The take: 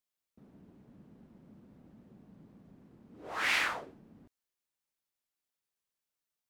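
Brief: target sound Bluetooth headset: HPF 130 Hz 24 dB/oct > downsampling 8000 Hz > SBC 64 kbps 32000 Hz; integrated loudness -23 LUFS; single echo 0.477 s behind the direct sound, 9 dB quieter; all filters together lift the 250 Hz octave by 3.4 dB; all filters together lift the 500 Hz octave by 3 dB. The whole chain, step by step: HPF 130 Hz 24 dB/oct; bell 250 Hz +3.5 dB; bell 500 Hz +3 dB; echo 0.477 s -9 dB; downsampling 8000 Hz; gain +10 dB; SBC 64 kbps 32000 Hz

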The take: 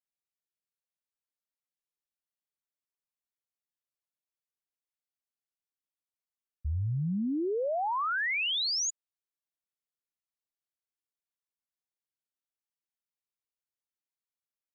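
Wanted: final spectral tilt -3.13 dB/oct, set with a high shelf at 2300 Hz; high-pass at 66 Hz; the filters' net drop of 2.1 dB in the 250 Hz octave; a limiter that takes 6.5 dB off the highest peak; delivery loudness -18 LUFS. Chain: HPF 66 Hz; bell 250 Hz -3 dB; high shelf 2300 Hz +7 dB; gain +12 dB; limiter -15 dBFS

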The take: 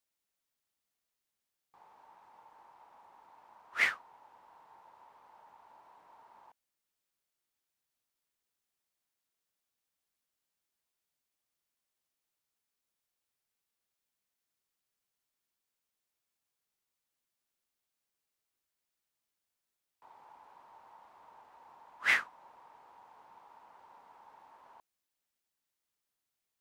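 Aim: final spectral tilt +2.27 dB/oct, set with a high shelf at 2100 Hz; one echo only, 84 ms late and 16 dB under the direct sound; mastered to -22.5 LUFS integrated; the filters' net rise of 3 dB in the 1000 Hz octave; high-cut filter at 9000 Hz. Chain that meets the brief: LPF 9000 Hz; bell 1000 Hz +5.5 dB; high shelf 2100 Hz -6.5 dB; echo 84 ms -16 dB; gain +10.5 dB

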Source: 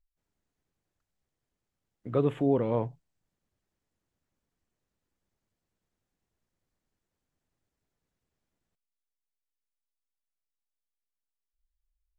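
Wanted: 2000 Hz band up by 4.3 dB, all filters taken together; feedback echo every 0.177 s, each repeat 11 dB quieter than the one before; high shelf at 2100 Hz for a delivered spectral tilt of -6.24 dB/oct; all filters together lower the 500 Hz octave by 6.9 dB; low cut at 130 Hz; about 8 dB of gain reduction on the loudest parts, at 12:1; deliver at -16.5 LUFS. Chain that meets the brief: HPF 130 Hz; bell 500 Hz -8.5 dB; bell 2000 Hz +8 dB; high shelf 2100 Hz -3.5 dB; compressor 12:1, threshold -32 dBFS; feedback echo 0.177 s, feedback 28%, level -11 dB; gain +23 dB

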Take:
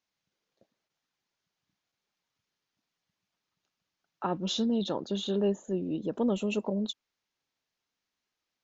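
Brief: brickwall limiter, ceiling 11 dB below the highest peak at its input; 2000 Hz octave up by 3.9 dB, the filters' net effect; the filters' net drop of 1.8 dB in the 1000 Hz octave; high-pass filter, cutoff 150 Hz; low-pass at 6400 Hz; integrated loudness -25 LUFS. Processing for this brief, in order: HPF 150 Hz; LPF 6400 Hz; bell 1000 Hz -4 dB; bell 2000 Hz +7.5 dB; gain +11.5 dB; limiter -16.5 dBFS

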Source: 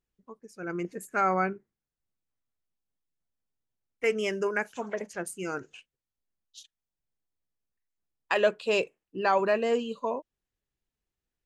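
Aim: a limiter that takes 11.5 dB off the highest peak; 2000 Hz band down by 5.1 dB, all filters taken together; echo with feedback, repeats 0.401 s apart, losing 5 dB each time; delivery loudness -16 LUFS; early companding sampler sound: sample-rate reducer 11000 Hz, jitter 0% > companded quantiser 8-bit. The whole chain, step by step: bell 2000 Hz -7 dB; limiter -24.5 dBFS; feedback echo 0.401 s, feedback 56%, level -5 dB; sample-rate reducer 11000 Hz, jitter 0%; companded quantiser 8-bit; gain +19.5 dB

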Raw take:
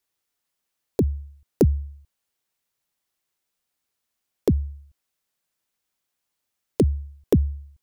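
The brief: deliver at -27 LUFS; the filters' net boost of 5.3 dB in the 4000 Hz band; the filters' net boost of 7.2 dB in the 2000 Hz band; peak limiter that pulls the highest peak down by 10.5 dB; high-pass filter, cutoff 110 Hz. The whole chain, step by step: HPF 110 Hz; bell 2000 Hz +8 dB; bell 4000 Hz +4.5 dB; gain +4 dB; limiter -12 dBFS

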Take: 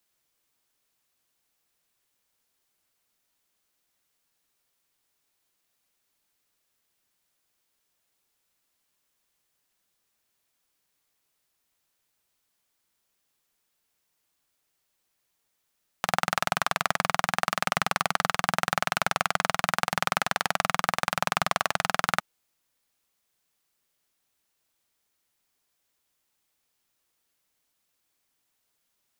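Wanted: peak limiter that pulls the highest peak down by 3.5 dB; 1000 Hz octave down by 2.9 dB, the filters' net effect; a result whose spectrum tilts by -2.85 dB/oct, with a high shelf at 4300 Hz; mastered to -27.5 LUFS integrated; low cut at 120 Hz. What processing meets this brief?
HPF 120 Hz; bell 1000 Hz -3.5 dB; high shelf 4300 Hz -6 dB; gain +4 dB; limiter -5.5 dBFS

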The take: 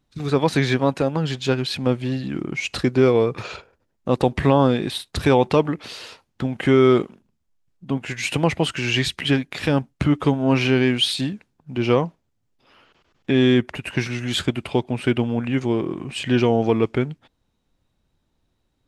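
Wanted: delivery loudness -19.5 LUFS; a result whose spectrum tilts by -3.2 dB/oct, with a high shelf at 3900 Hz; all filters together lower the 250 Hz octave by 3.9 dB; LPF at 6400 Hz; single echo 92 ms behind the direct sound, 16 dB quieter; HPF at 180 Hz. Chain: HPF 180 Hz; LPF 6400 Hz; bell 250 Hz -3.5 dB; high shelf 3900 Hz +6 dB; echo 92 ms -16 dB; gain +3 dB

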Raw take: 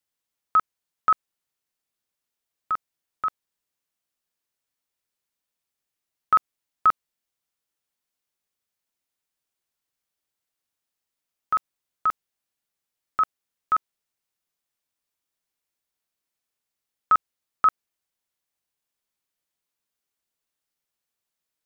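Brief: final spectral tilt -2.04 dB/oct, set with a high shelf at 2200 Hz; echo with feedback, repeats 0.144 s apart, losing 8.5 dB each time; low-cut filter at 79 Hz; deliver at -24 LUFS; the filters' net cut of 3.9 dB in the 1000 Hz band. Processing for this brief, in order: HPF 79 Hz; bell 1000 Hz -4.5 dB; high shelf 2200 Hz -3.5 dB; feedback echo 0.144 s, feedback 38%, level -8.5 dB; gain +5.5 dB

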